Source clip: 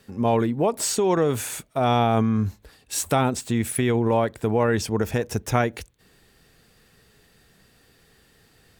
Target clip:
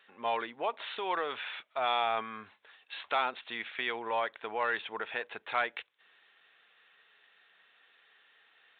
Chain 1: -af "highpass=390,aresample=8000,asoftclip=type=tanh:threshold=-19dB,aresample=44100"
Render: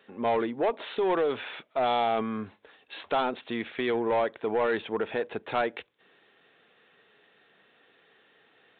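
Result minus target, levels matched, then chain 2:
500 Hz band +5.0 dB
-af "highpass=1.1k,aresample=8000,asoftclip=type=tanh:threshold=-19dB,aresample=44100"

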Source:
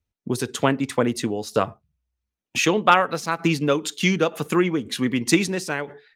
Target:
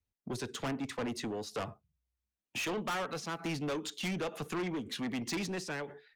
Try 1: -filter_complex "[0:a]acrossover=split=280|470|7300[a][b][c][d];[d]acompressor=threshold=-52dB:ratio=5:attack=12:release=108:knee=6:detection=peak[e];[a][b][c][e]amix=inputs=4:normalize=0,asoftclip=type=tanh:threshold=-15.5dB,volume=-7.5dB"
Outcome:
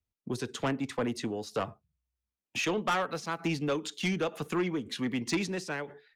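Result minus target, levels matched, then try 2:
soft clip: distortion -6 dB
-filter_complex "[0:a]acrossover=split=280|470|7300[a][b][c][d];[d]acompressor=threshold=-52dB:ratio=5:attack=12:release=108:knee=6:detection=peak[e];[a][b][c][e]amix=inputs=4:normalize=0,asoftclip=type=tanh:threshold=-24.5dB,volume=-7.5dB"

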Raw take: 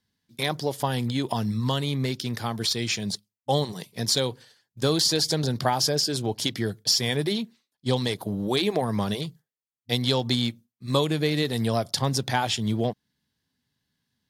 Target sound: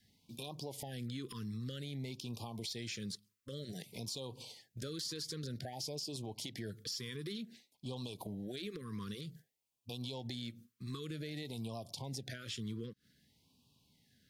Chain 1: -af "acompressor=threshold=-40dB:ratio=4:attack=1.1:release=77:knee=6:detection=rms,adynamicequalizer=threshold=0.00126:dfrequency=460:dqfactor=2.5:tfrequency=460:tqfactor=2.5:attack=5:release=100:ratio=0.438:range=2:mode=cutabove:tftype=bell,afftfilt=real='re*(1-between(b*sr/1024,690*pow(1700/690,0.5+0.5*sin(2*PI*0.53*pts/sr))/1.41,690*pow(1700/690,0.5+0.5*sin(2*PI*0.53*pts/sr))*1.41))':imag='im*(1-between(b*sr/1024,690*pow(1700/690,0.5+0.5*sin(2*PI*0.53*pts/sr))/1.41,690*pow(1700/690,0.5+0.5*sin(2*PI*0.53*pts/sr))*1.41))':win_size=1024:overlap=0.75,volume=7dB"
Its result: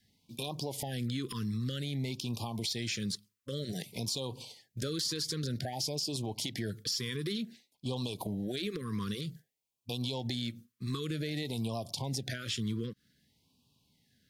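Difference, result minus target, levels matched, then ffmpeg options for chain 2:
compressor: peak gain reduction -7.5 dB
-af "acompressor=threshold=-50dB:ratio=4:attack=1.1:release=77:knee=6:detection=rms,adynamicequalizer=threshold=0.00126:dfrequency=460:dqfactor=2.5:tfrequency=460:tqfactor=2.5:attack=5:release=100:ratio=0.438:range=2:mode=cutabove:tftype=bell,afftfilt=real='re*(1-between(b*sr/1024,690*pow(1700/690,0.5+0.5*sin(2*PI*0.53*pts/sr))/1.41,690*pow(1700/690,0.5+0.5*sin(2*PI*0.53*pts/sr))*1.41))':imag='im*(1-between(b*sr/1024,690*pow(1700/690,0.5+0.5*sin(2*PI*0.53*pts/sr))/1.41,690*pow(1700/690,0.5+0.5*sin(2*PI*0.53*pts/sr))*1.41))':win_size=1024:overlap=0.75,volume=7dB"

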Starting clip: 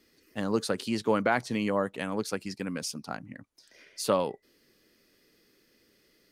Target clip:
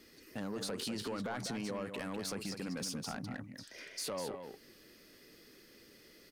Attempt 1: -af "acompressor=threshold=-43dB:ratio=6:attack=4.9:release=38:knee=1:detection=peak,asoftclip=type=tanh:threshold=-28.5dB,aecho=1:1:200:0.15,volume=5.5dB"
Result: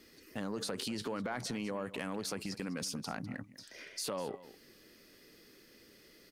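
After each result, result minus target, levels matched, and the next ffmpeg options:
soft clip: distortion -11 dB; echo-to-direct -9 dB
-af "acompressor=threshold=-43dB:ratio=6:attack=4.9:release=38:knee=1:detection=peak,asoftclip=type=tanh:threshold=-37dB,aecho=1:1:200:0.15,volume=5.5dB"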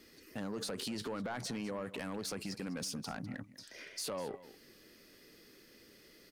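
echo-to-direct -9 dB
-af "acompressor=threshold=-43dB:ratio=6:attack=4.9:release=38:knee=1:detection=peak,asoftclip=type=tanh:threshold=-37dB,aecho=1:1:200:0.422,volume=5.5dB"

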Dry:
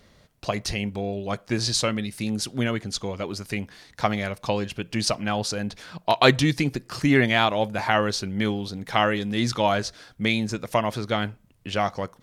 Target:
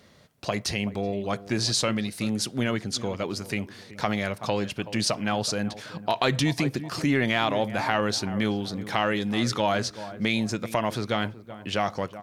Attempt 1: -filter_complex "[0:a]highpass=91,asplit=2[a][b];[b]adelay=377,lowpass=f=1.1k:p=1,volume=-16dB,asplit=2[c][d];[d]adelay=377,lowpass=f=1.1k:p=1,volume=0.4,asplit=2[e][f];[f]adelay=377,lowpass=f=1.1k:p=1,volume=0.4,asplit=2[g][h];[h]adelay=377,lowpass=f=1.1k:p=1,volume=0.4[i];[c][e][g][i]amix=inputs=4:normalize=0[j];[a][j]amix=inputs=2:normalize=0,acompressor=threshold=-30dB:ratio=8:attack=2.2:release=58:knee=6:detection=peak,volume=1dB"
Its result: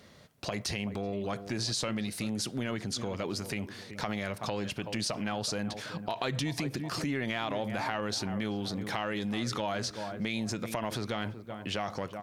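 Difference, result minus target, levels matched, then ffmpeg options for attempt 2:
compressor: peak gain reduction +9.5 dB
-filter_complex "[0:a]highpass=91,asplit=2[a][b];[b]adelay=377,lowpass=f=1.1k:p=1,volume=-16dB,asplit=2[c][d];[d]adelay=377,lowpass=f=1.1k:p=1,volume=0.4,asplit=2[e][f];[f]adelay=377,lowpass=f=1.1k:p=1,volume=0.4,asplit=2[g][h];[h]adelay=377,lowpass=f=1.1k:p=1,volume=0.4[i];[c][e][g][i]amix=inputs=4:normalize=0[j];[a][j]amix=inputs=2:normalize=0,acompressor=threshold=-19dB:ratio=8:attack=2.2:release=58:knee=6:detection=peak,volume=1dB"

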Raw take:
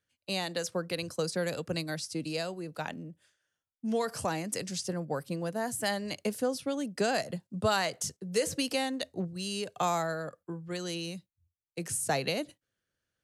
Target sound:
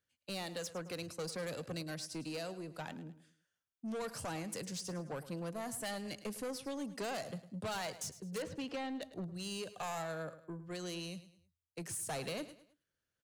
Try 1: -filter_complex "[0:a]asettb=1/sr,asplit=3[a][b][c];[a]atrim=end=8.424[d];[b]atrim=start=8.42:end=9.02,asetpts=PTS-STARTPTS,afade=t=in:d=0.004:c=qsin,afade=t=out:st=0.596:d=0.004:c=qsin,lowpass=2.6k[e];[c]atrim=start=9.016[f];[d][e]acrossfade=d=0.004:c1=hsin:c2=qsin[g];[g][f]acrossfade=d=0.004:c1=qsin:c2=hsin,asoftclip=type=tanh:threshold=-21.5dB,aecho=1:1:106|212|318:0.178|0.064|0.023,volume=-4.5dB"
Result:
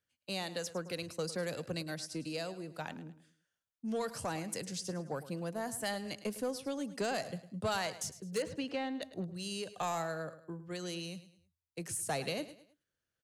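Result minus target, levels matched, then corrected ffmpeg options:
soft clip: distortion -10 dB
-filter_complex "[0:a]asettb=1/sr,asplit=3[a][b][c];[a]atrim=end=8.424[d];[b]atrim=start=8.42:end=9.02,asetpts=PTS-STARTPTS,afade=t=in:d=0.004:c=qsin,afade=t=out:st=0.596:d=0.004:c=qsin,lowpass=2.6k[e];[c]atrim=start=9.016[f];[d][e]acrossfade=d=0.004:c1=hsin:c2=qsin[g];[g][f]acrossfade=d=0.004:c1=qsin:c2=hsin,asoftclip=type=tanh:threshold=-31.5dB,aecho=1:1:106|212|318:0.178|0.064|0.023,volume=-4.5dB"

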